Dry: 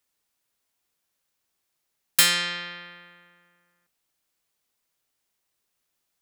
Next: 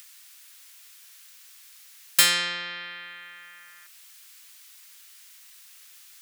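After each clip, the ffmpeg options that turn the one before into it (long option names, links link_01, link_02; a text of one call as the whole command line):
ffmpeg -i in.wav -filter_complex "[0:a]highpass=200,acrossover=split=1300[link_01][link_02];[link_02]acompressor=mode=upward:threshold=-28dB:ratio=2.5[link_03];[link_01][link_03]amix=inputs=2:normalize=0" out.wav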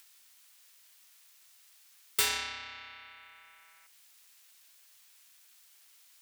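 ffmpeg -i in.wav -af "aeval=exprs='0.631*(cos(1*acos(clip(val(0)/0.631,-1,1)))-cos(1*PI/2))+0.0631*(cos(8*acos(clip(val(0)/0.631,-1,1)))-cos(8*PI/2))':channel_layout=same,lowshelf=frequency=220:gain=-6.5,aeval=exprs='val(0)*sin(2*PI*420*n/s)':channel_layout=same,volume=-7dB" out.wav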